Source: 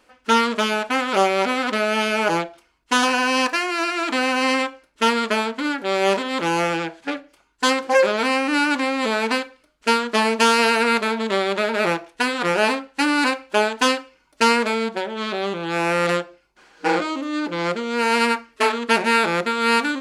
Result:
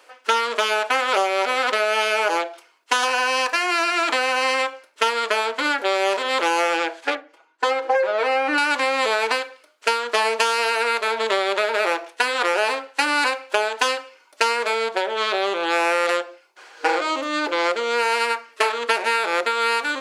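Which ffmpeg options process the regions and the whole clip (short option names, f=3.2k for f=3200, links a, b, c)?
-filter_complex "[0:a]asettb=1/sr,asplit=3[a][b][c];[a]atrim=end=7.154[d];[b]atrim=start=7.15:end=8.58,asetpts=PTS-STARTPTS,afade=t=in:d=0.004:c=qsin,afade=t=out:st=1.426:d=0.004:c=qsin,lowpass=f=1.2k:p=1,aecho=1:1:6.2:0.7,atrim=end_sample=63063[e];[c]atrim=start=8.576[f];[d][e]acrossfade=d=0.004:c1=hsin:c2=qsin[g];[g][f]acrossfade=d=0.004:c1=qsin:c2=hsin,highpass=f=410:w=0.5412,highpass=f=410:w=1.3066,acompressor=threshold=-24dB:ratio=6,volume=7dB"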